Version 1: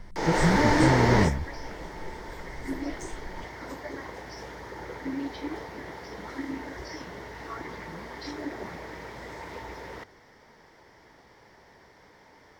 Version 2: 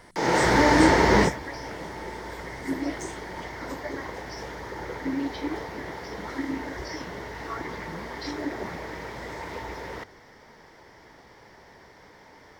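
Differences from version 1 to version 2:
speech: add spectral tilt +4 dB per octave
background +4.0 dB

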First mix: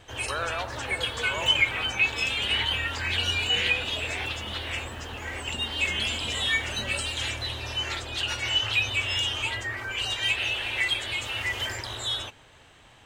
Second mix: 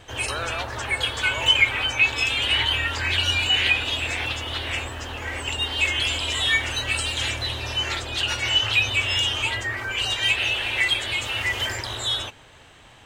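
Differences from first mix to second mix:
first sound +4.5 dB
second sound: add high-pass with resonance 960 Hz, resonance Q 2.1

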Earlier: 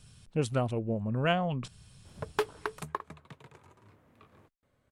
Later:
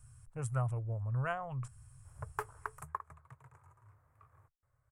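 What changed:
speech: add high-shelf EQ 7,900 Hz +5 dB
master: add drawn EQ curve 130 Hz 0 dB, 190 Hz −26 dB, 1,200 Hz −2 dB, 2,000 Hz −10 dB, 3,700 Hz −28 dB, 7,900 Hz −5 dB

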